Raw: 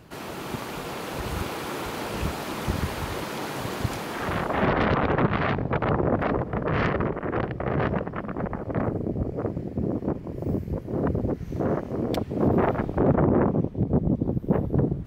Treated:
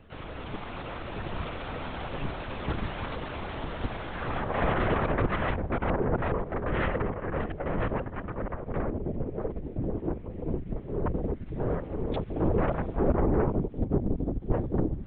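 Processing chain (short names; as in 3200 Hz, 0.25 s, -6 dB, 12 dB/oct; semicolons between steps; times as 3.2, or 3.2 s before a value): LPC vocoder at 8 kHz whisper; gain -3.5 dB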